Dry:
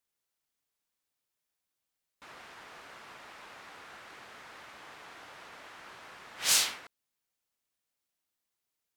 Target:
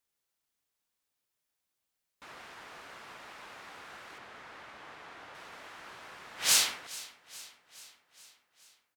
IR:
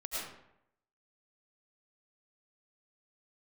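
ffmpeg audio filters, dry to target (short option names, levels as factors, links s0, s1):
-filter_complex "[0:a]asettb=1/sr,asplit=3[s0][s1][s2];[s0]atrim=end=4.184[s3];[s1]atrim=start=4.18:end=5.35,asetpts=PTS-STARTPTS,afade=t=in:d=0.004:c=qsin,afade=t=out:st=1.166:d=0.004:c=qsin,aemphasis=mode=reproduction:type=cd[s4];[s2]atrim=start=5.346[s5];[s3][s4]acrossfade=d=0.004:c1=hsin:c2=qsin[s6];[s6][s5]acrossfade=d=0.004:c1=qsin:c2=hsin,aecho=1:1:422|844|1266|1688|2110:0.119|0.0701|0.0414|0.0244|0.0144,volume=1.12"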